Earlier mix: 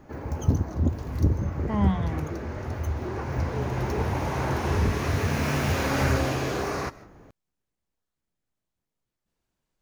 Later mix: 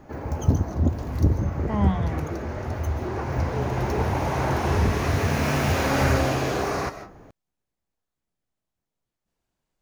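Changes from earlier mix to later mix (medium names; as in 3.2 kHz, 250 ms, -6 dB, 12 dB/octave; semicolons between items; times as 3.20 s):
background: send +10.5 dB; master: add peaking EQ 720 Hz +3 dB 0.62 oct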